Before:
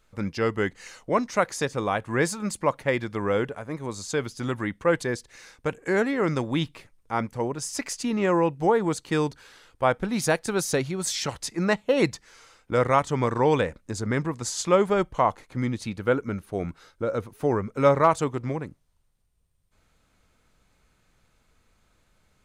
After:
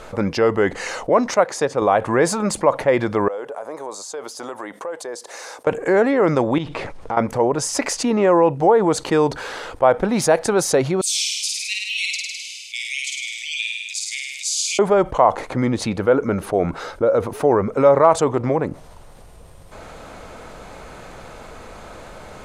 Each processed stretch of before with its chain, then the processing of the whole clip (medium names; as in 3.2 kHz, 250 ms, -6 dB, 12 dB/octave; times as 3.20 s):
1.34–1.82 s: high-pass 91 Hz + treble shelf 12 kHz -6 dB + upward expansion, over -42 dBFS
3.28–5.67 s: high-pass 700 Hz + peaking EQ 2.2 kHz -12.5 dB 2.3 oct + compression 3:1, threshold -54 dBFS
6.58–7.17 s: companding laws mixed up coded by mu + compression 3:1, threshold -40 dBFS + distance through air 67 m
11.01–14.79 s: steep high-pass 2.3 kHz 96 dB/octave + flutter echo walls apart 8.9 m, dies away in 0.91 s
whole clip: low-pass 12 kHz 12 dB/octave; peaking EQ 640 Hz +13.5 dB 2.2 oct; level flattener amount 50%; trim -7 dB